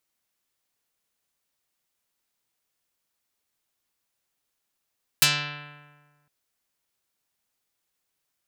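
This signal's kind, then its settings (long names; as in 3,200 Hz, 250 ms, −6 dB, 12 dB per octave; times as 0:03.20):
Karplus-Strong string D3, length 1.06 s, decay 1.51 s, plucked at 0.47, dark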